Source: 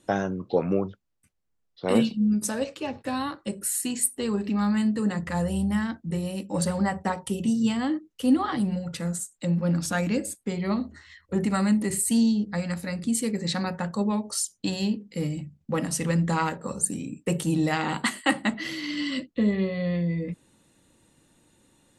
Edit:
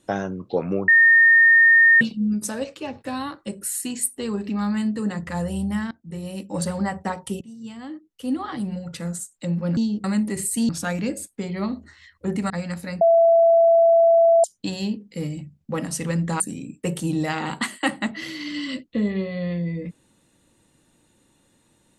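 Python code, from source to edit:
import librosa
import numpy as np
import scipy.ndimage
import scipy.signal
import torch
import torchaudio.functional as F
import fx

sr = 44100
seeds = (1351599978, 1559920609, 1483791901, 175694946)

y = fx.edit(x, sr, fx.bleep(start_s=0.88, length_s=1.13, hz=1830.0, db=-10.0),
    fx.fade_in_from(start_s=5.91, length_s=0.46, floor_db=-18.5),
    fx.fade_in_from(start_s=7.41, length_s=1.61, floor_db=-22.0),
    fx.swap(start_s=9.77, length_s=1.81, other_s=12.23, other_length_s=0.27),
    fx.bleep(start_s=13.01, length_s=1.43, hz=668.0, db=-11.5),
    fx.cut(start_s=16.4, length_s=0.43), tone=tone)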